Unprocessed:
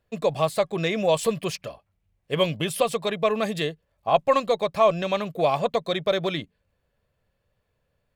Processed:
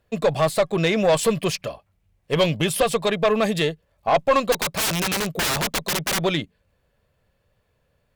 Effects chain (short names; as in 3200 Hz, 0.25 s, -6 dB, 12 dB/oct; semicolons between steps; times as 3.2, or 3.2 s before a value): 4.52–6.22 wrapped overs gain 23 dB; tube stage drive 18 dB, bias 0.25; gain +6.5 dB